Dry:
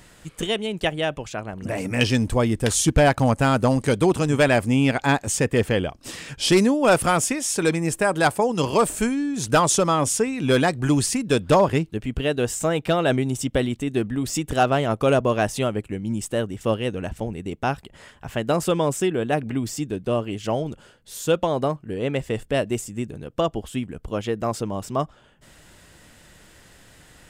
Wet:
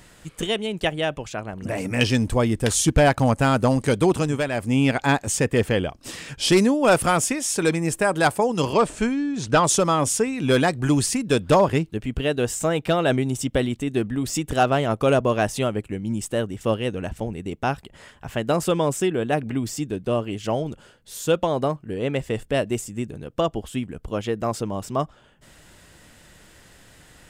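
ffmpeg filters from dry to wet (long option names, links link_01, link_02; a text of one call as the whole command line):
ffmpeg -i in.wav -filter_complex "[0:a]asettb=1/sr,asplit=3[link_01][link_02][link_03];[link_01]atrim=end=8.734[link_04];[link_02]atrim=start=8.73:end=9.64,asetpts=PTS-STARTPTS,afade=type=in:duration=0.004:curve=qsin,afade=type=out:start_time=0.906:duration=0.004:curve=qsin,lowpass=5300[link_05];[link_03]atrim=start=9.636[link_06];[link_04][link_05]acrossfade=duration=0.004:curve1=hsin:curve2=qsin[link_07];[link_07][link_06]acrossfade=duration=0.004:curve1=qsin:curve2=hsin,asplit=3[link_08][link_09][link_10];[link_08]atrim=end=4.46,asetpts=PTS-STARTPTS,afade=type=out:start_time=4.2:duration=0.26:silence=0.375837[link_11];[link_09]atrim=start=4.46:end=4.52,asetpts=PTS-STARTPTS,volume=-8.5dB[link_12];[link_10]atrim=start=4.52,asetpts=PTS-STARTPTS,afade=type=in:duration=0.26:silence=0.375837[link_13];[link_11][link_12][link_13]concat=n=3:v=0:a=1" out.wav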